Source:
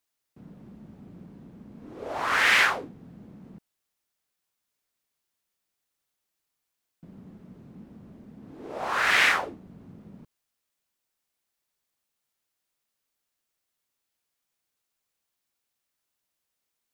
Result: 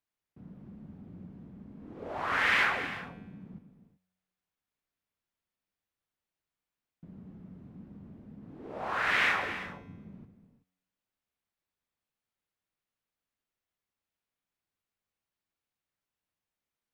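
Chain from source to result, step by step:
bass and treble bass +5 dB, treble −10 dB
tuned comb filter 92 Hz, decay 1.1 s, harmonics all, mix 50%
reverb whose tail is shaped and stops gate 400 ms flat, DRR 8.5 dB

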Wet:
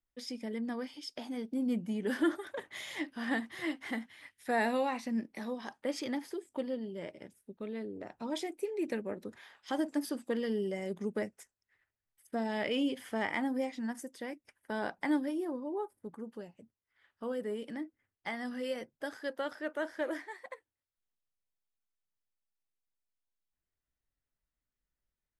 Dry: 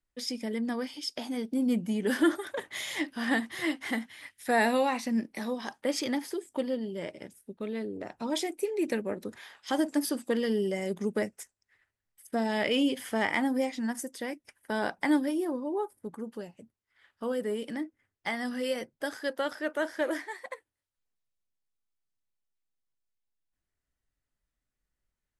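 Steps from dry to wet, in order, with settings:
high-shelf EQ 4,400 Hz −6.5 dB
level −5 dB

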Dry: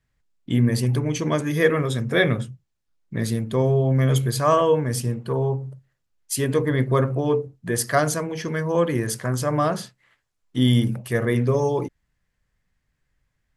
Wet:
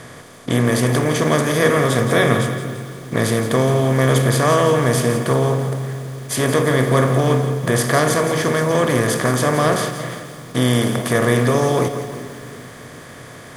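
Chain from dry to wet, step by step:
compressor on every frequency bin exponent 0.4
echo with a time of its own for lows and highs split 400 Hz, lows 384 ms, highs 176 ms, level −14 dB
feedback echo at a low word length 166 ms, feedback 55%, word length 6 bits, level −11.5 dB
level −1.5 dB

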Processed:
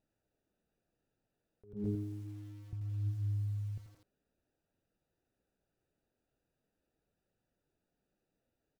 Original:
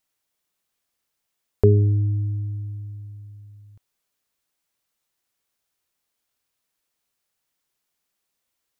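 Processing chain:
adaptive Wiener filter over 41 samples
0:01.73–0:02.73: flat-topped band-pass 220 Hz, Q 3.4
flanger 0.41 Hz, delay 0.3 ms, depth 7.7 ms, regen −64%
repeating echo 110 ms, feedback 29%, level −24 dB
compressor whose output falls as the input rises −45 dBFS, ratio −1
feedback echo at a low word length 85 ms, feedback 55%, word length 10 bits, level −11.5 dB
level +4.5 dB

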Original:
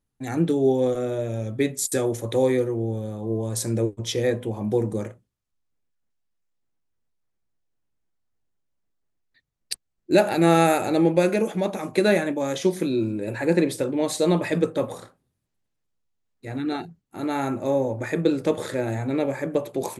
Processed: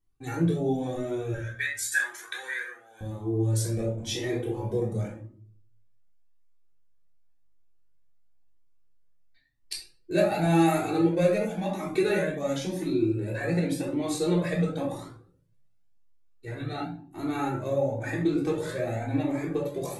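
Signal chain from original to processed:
0:03.74–0:04.77: double-tracking delay 32 ms −5 dB
in parallel at −1.5 dB: downward compressor, threshold −27 dBFS, peak gain reduction 14.5 dB
0:01.34–0:03.01: on the sum: high-pass with resonance 1,600 Hz, resonance Q 14
rectangular room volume 520 cubic metres, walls furnished, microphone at 3.5 metres
flanger whose copies keep moving one way rising 0.93 Hz
level −8 dB

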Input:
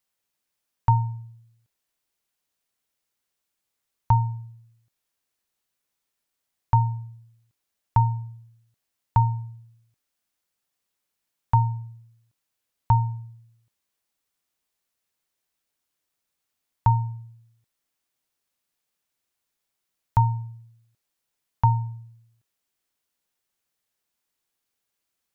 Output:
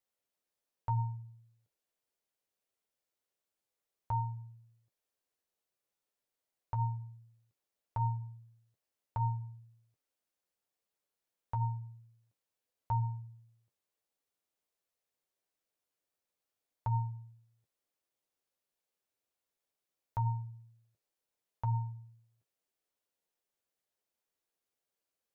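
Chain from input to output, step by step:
parametric band 510 Hz +8.5 dB 1.3 octaves
brickwall limiter −15 dBFS, peak gain reduction 9.5 dB
flanger 0.83 Hz, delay 9.1 ms, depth 3 ms, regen −33%
level −6 dB

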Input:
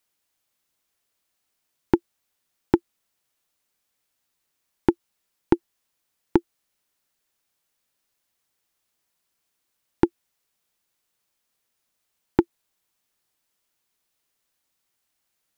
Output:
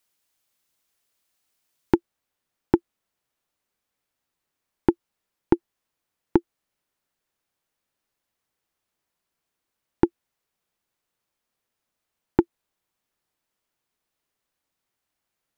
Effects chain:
high-shelf EQ 2,600 Hz +2 dB, from 0:01.95 −8 dB

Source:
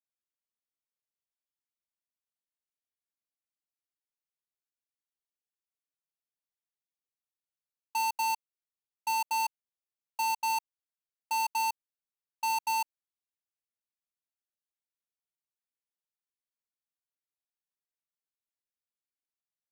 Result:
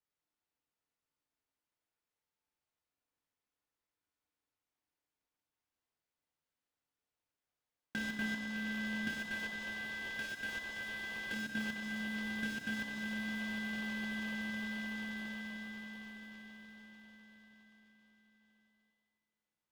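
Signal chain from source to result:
high-shelf EQ 3,500 Hz −12 dB
echo that builds up and dies away 152 ms, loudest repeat 5, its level −17 dB
downward compressor 6 to 1, threshold −46 dBFS, peak gain reduction 16 dB
ring modulation 680 Hz
0:09.08–0:11.33: high-pass filter 530 Hz 12 dB per octave
feedback delay network reverb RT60 2.1 s, low-frequency decay 1.1×, high-frequency decay 0.9×, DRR 1.5 dB
short delay modulated by noise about 1,200 Hz, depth 0.033 ms
level +9 dB

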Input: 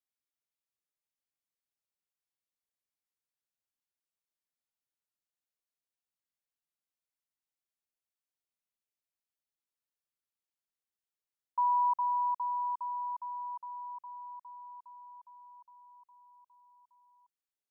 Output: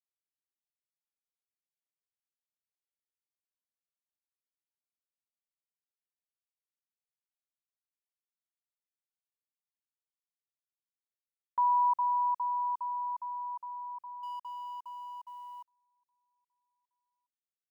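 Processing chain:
0:14.23–0:15.68: mu-law and A-law mismatch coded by mu
noise gate −52 dBFS, range −22 dB
level +1.5 dB

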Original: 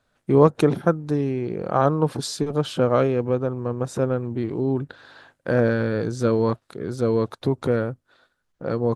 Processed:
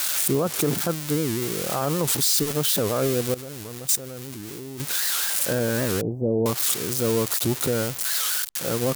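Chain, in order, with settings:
spike at every zero crossing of −12 dBFS
0:03.34–0:04.80: output level in coarse steps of 18 dB
0:06.01–0:06.46: elliptic low-pass filter 760 Hz, stop band 50 dB
brickwall limiter −13.5 dBFS, peak gain reduction 11.5 dB
wow of a warped record 78 rpm, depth 250 cents

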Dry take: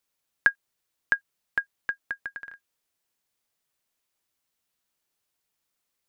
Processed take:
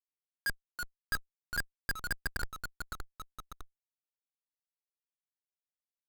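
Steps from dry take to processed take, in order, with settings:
comparator with hysteresis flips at −30.5 dBFS
delay with pitch and tempo change per echo 271 ms, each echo −2 semitones, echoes 2, each echo −6 dB
level +6.5 dB

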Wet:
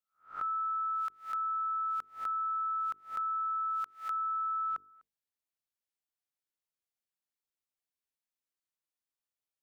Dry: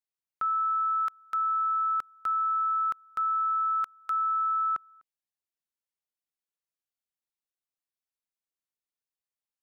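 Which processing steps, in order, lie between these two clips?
peak hold with a rise ahead of every peak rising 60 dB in 0.33 s
mains-hum notches 50/100/150/200/250/300/350/400/450 Hz
downward compressor 1.5 to 1, threshold −33 dBFS, peak gain reduction 3 dB
level −3.5 dB

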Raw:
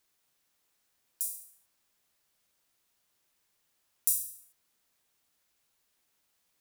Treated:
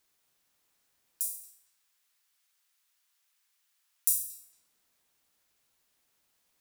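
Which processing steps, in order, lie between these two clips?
0:01.46–0:04.15: high-pass filter 1,200 Hz 12 dB per octave
feedback echo with a low-pass in the loop 228 ms, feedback 63%, low-pass 1,900 Hz, level −9.5 dB
level +1 dB

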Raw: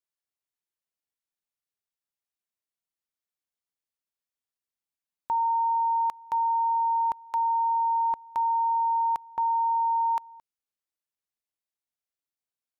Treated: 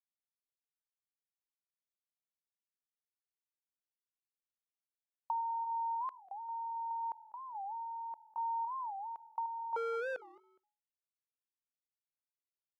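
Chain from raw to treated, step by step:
0:09.76–0:10.24: sub-harmonics by changed cycles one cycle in 2, inverted
downward expander −34 dBFS
0:05.64–0:06.91: parametric band 920 Hz −4 dB 0.87 octaves
downward compressor, threshold −32 dBFS, peak gain reduction 8 dB
sample-and-hold tremolo 3.7 Hz, depth 80%
resonant band-pass 740 Hz, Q 0.97
on a send: echo with shifted repeats 198 ms, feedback 32%, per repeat −41 Hz, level −22.5 dB
on the sum: wow of a warped record 45 rpm, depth 250 cents

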